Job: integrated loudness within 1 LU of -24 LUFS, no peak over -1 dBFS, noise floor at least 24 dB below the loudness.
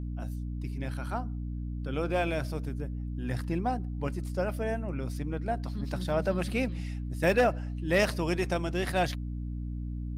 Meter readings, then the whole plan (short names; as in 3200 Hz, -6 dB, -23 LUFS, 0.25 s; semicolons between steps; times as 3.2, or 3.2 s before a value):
hum 60 Hz; harmonics up to 300 Hz; hum level -32 dBFS; loudness -31.5 LUFS; peak -13.0 dBFS; loudness target -24.0 LUFS
-> notches 60/120/180/240/300 Hz; gain +7.5 dB